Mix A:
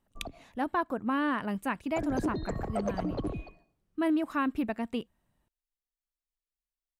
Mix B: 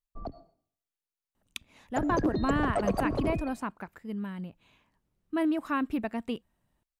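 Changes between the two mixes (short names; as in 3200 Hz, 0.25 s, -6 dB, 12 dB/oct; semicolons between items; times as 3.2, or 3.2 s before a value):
speech: entry +1.35 s; background +4.0 dB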